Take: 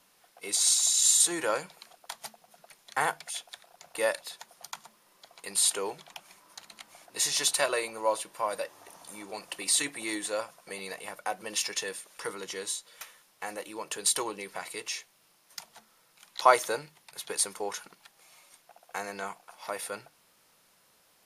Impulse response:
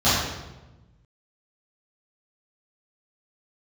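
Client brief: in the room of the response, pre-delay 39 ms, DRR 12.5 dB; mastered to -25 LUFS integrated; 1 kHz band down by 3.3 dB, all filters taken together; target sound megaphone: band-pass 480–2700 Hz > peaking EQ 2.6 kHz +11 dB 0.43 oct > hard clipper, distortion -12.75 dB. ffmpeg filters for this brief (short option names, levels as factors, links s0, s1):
-filter_complex "[0:a]equalizer=f=1000:t=o:g=-4,asplit=2[s0][s1];[1:a]atrim=start_sample=2205,adelay=39[s2];[s1][s2]afir=irnorm=-1:irlink=0,volume=0.0237[s3];[s0][s3]amix=inputs=2:normalize=0,highpass=480,lowpass=2700,equalizer=f=2600:t=o:w=0.43:g=11,asoftclip=type=hard:threshold=0.1,volume=3.35"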